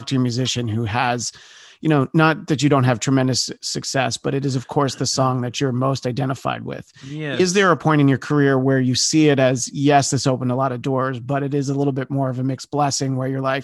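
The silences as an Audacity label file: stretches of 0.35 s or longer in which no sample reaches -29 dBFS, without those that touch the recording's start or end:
1.300000	1.830000	silence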